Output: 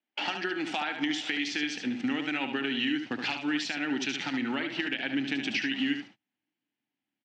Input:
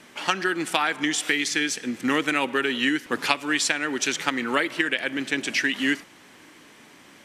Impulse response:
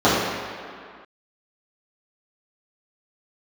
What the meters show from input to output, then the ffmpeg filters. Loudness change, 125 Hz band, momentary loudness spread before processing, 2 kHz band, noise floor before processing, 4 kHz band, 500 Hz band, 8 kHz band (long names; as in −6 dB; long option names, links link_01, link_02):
−6.5 dB, −4.5 dB, 4 LU, −8.0 dB, −51 dBFS, −5.0 dB, −9.5 dB, −15.5 dB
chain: -filter_complex "[0:a]agate=range=-41dB:threshold=-36dB:ratio=16:detection=peak,asubboost=boost=6:cutoff=180,asplit=2[link_01][link_02];[link_02]alimiter=limit=-13dB:level=0:latency=1,volume=-0.5dB[link_03];[link_01][link_03]amix=inputs=2:normalize=0,acompressor=threshold=-23dB:ratio=6,aeval=exprs='0.224*(abs(mod(val(0)/0.224+3,4)-2)-1)':channel_layout=same,highpass=frequency=130:width=0.5412,highpass=frequency=130:width=1.3066,equalizer=frequency=160:width_type=q:width=4:gain=-9,equalizer=frequency=290:width_type=q:width=4:gain=5,equalizer=frequency=490:width_type=q:width=4:gain=-3,equalizer=frequency=780:width_type=q:width=4:gain=8,equalizer=frequency=1100:width_type=q:width=4:gain=-8,equalizer=frequency=2800:width_type=q:width=4:gain=5,lowpass=frequency=5100:width=0.5412,lowpass=frequency=5100:width=1.3066,asplit=2[link_04][link_05];[link_05]aecho=0:1:73:0.447[link_06];[link_04][link_06]amix=inputs=2:normalize=0,volume=-5.5dB" -ar 44100 -c:a libmp3lame -b:a 96k